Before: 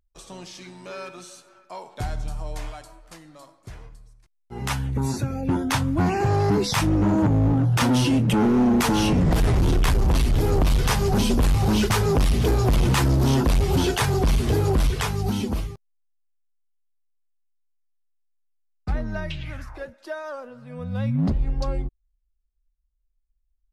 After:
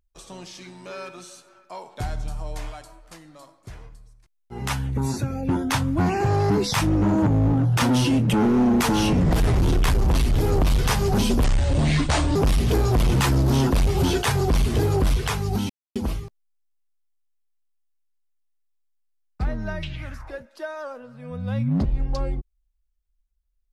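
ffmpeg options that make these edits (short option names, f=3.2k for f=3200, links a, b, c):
-filter_complex "[0:a]asplit=4[a][b][c][d];[a]atrim=end=11.444[e];[b]atrim=start=11.44:end=12.09,asetpts=PTS-STARTPTS,asetrate=31311,aresample=44100,atrim=end_sample=40373,asetpts=PTS-STARTPTS[f];[c]atrim=start=12.086:end=15.43,asetpts=PTS-STARTPTS,afade=t=out:st=3.34:d=0.004:c=hsin,apad=pad_dur=0.26[g];[d]atrim=start=15.43,asetpts=PTS-STARTPTS,afade=t=in:d=0.004:c=hsin[h];[e][f]acrossfade=d=0.004:c1=hsin:c2=hsin[i];[g][h]concat=n=2:v=0:a=1[j];[i][j]acrossfade=d=0.004:c1=hsin:c2=hsin"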